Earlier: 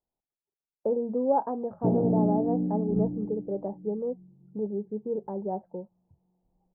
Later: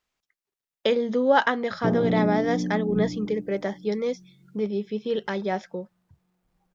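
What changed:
speech +4.0 dB; master: remove elliptic low-pass 880 Hz, stop band 80 dB

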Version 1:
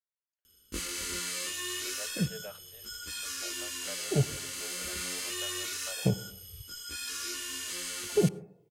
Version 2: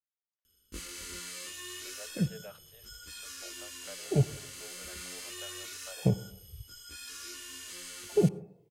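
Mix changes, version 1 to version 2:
speech -3.0 dB; first sound -7.0 dB; master: add low shelf 78 Hz +6 dB

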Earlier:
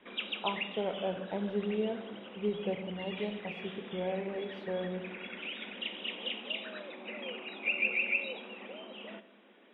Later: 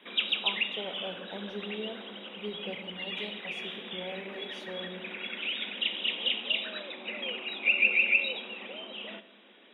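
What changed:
speech -7.0 dB; master: remove air absorption 470 m

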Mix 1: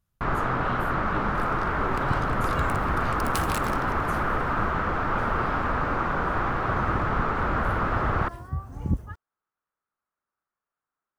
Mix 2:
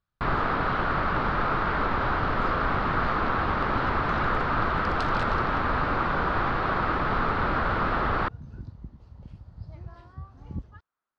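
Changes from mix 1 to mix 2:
first sound +9.5 dB; second sound: entry +1.65 s; master: add ladder low-pass 5000 Hz, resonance 50%

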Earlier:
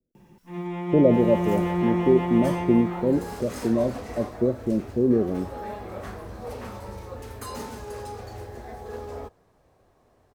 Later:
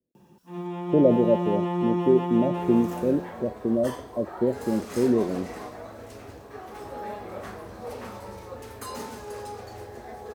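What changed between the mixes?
first sound: add bell 2100 Hz -14 dB 0.29 oct; second sound: entry +1.40 s; master: add HPF 160 Hz 6 dB/oct

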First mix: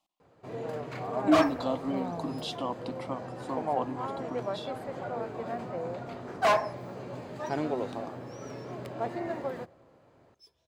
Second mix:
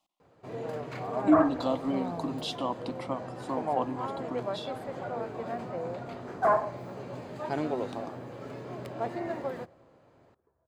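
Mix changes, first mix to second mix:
speech: send +11.0 dB; second sound: add steep low-pass 1600 Hz

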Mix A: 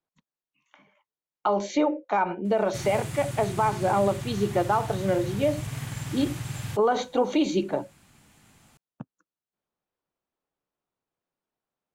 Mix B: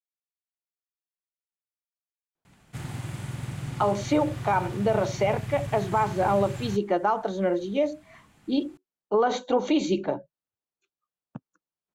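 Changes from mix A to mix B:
speech: entry +2.35 s; background: add high shelf 3800 Hz -8.5 dB

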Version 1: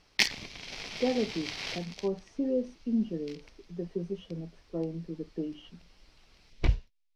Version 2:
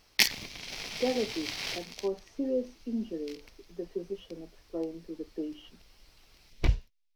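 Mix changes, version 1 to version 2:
speech: add HPF 250 Hz 24 dB/oct; background: remove air absorption 59 m

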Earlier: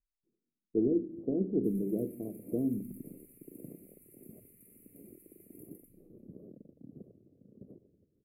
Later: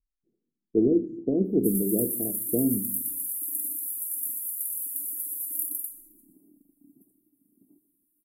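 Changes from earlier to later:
speech +6.0 dB; first sound: add double band-pass 510 Hz, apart 1.6 oct; master: remove air absorption 400 m

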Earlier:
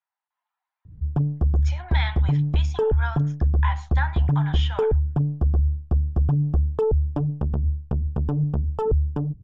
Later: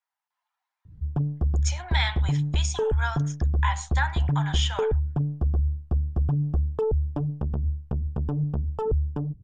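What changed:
speech: remove air absorption 220 m; background -3.5 dB

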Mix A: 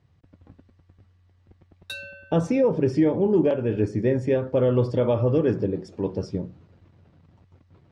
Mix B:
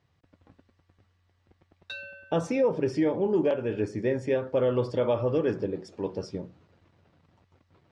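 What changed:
background: add air absorption 180 m; master: add low shelf 330 Hz -10.5 dB

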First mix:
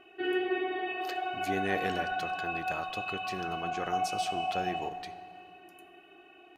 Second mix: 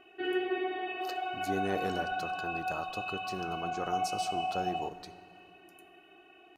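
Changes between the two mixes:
speech: add band shelf 2400 Hz -11.5 dB 1.2 oct; background: send -9.5 dB

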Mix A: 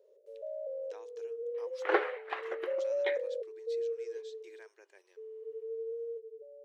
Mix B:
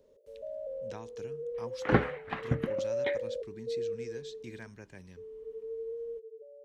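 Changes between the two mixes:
speech +7.0 dB; master: remove brick-wall FIR high-pass 330 Hz

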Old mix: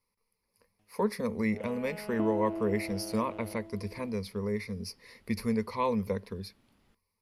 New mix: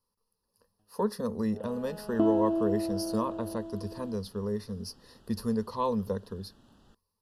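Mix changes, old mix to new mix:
first sound: add air absorption 270 m; second sound +8.0 dB; master: add Butterworth band-stop 2200 Hz, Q 2

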